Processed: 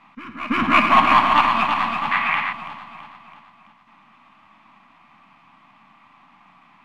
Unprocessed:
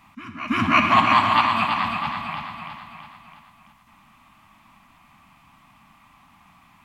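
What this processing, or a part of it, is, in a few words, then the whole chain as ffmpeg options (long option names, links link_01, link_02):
crystal radio: -filter_complex "[0:a]highpass=210,lowpass=3200,aeval=exprs='if(lt(val(0),0),0.708*val(0),val(0))':channel_layout=same,asettb=1/sr,asplit=3[link_01][link_02][link_03];[link_01]atrim=end=2.114[link_04];[link_02]atrim=start=2.11:end=2.53,asetpts=PTS-STARTPTS,afade=type=in:duration=0.004:curve=qsin,afade=type=out:start_time=0.416:duration=0.004:curve=qsin,equalizer=frequency=2000:width_type=o:width=1.2:gain=14.5[link_05];[link_03]atrim=start=2.526[link_06];[link_04][link_05]acrossfade=duration=0.004:curve1=hsin:curve2=qsin[link_07];[link_07][link_06]acrossfade=duration=0.004:curve1=qsin:curve2=hsin,volume=4dB"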